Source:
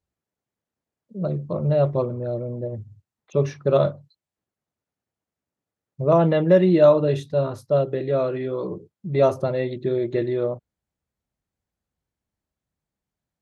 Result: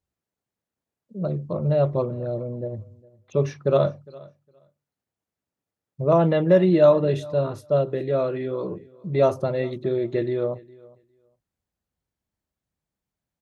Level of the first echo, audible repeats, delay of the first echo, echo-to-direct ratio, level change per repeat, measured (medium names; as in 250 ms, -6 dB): -23.0 dB, 1, 408 ms, -23.0 dB, no regular repeats